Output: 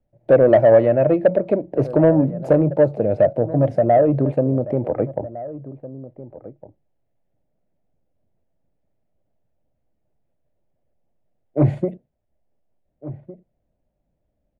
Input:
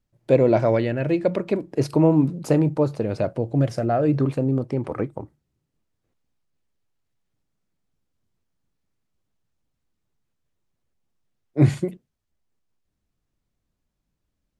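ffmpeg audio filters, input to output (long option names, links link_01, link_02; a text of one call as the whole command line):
ffmpeg -i in.wav -filter_complex "[0:a]firequalizer=gain_entry='entry(420,0);entry(600,10);entry(1100,-11);entry(1900,-7);entry(5200,-22)':delay=0.05:min_phase=1,asplit=2[link_01][link_02];[link_02]acompressor=threshold=-26dB:ratio=6,volume=-3dB[link_03];[link_01][link_03]amix=inputs=2:normalize=0,asoftclip=type=tanh:threshold=-6.5dB,asettb=1/sr,asplit=3[link_04][link_05][link_06];[link_04]atrim=end=0.714[link_07];[link_05]atrim=start=0.71:end=1.14,asetpts=PTS-STARTPTS,afade=type=in:duration=0.004:curve=qsin,afade=type=out:start_time=0.426:duration=0.004:curve=qsin,equalizer=frequency=1100:width_type=o:width=1.6:gain=6.5[link_08];[link_06]atrim=start=1.136[link_09];[link_07][link_08]acrossfade=duration=0.004:curve1=hsin:curve2=qsin[link_10];[link_10][link_09]acrossfade=duration=0.004:curve1=qsin:curve2=hsin,asplit=2[link_11][link_12];[link_12]adelay=1458,volume=-16dB,highshelf=frequency=4000:gain=-32.8[link_13];[link_11][link_13]amix=inputs=2:normalize=0,acrossover=split=110|830[link_14][link_15][link_16];[link_15]crystalizer=i=9:c=0[link_17];[link_14][link_17][link_16]amix=inputs=3:normalize=0" out.wav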